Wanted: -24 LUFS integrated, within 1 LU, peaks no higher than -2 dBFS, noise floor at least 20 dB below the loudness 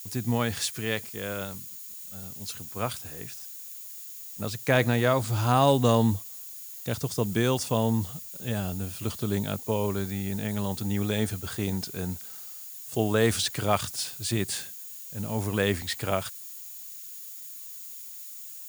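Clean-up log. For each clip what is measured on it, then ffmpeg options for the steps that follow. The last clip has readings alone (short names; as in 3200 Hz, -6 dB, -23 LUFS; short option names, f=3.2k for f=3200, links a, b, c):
steady tone 6800 Hz; tone level -52 dBFS; noise floor -42 dBFS; noise floor target -49 dBFS; loudness -29.0 LUFS; peak -8.5 dBFS; loudness target -24.0 LUFS
-> -af "bandreject=f=6.8k:w=30"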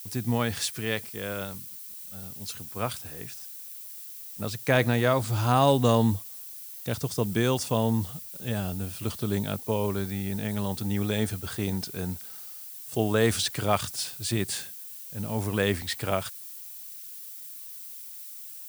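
steady tone none; noise floor -42 dBFS; noise floor target -49 dBFS
-> -af "afftdn=nr=7:nf=-42"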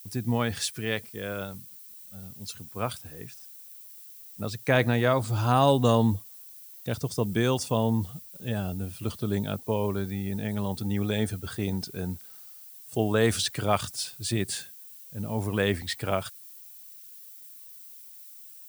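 noise floor -48 dBFS; loudness -28.0 LUFS; peak -8.5 dBFS; loudness target -24.0 LUFS
-> -af "volume=4dB"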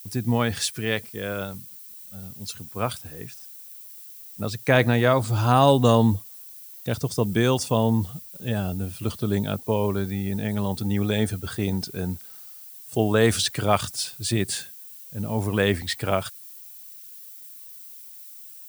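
loudness -24.0 LUFS; peak -4.5 dBFS; noise floor -44 dBFS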